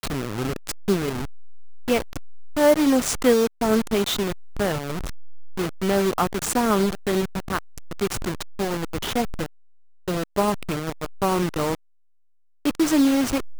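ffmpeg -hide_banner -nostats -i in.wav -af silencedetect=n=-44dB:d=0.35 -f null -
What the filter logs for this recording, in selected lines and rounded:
silence_start: 9.46
silence_end: 10.08 | silence_duration: 0.62
silence_start: 11.75
silence_end: 12.65 | silence_duration: 0.90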